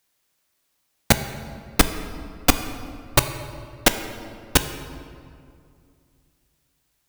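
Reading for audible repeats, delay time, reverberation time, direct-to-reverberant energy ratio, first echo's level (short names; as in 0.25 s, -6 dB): none, none, 2.3 s, 8.5 dB, none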